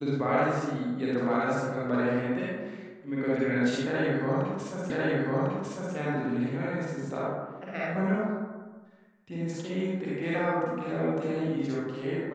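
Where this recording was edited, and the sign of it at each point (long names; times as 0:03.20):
0:04.90: the same again, the last 1.05 s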